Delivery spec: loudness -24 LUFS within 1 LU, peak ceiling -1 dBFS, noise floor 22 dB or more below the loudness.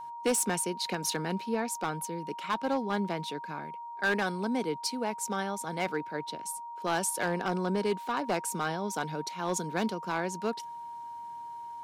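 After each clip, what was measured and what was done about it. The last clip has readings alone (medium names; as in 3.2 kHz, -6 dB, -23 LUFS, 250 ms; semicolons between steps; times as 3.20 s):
clipped samples 0.9%; clipping level -22.0 dBFS; steady tone 940 Hz; tone level -39 dBFS; loudness -32.5 LUFS; peak level -22.0 dBFS; loudness target -24.0 LUFS
-> clip repair -22 dBFS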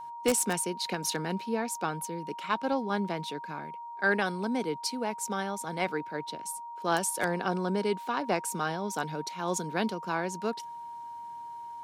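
clipped samples 0.0%; steady tone 940 Hz; tone level -39 dBFS
-> band-stop 940 Hz, Q 30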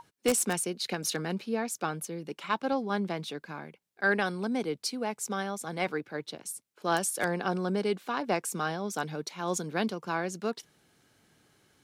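steady tone not found; loudness -32.0 LUFS; peak level -12.5 dBFS; loudness target -24.0 LUFS
-> trim +8 dB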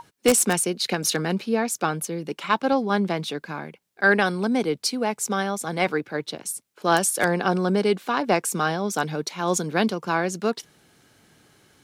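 loudness -24.0 LUFS; peak level -4.5 dBFS; noise floor -66 dBFS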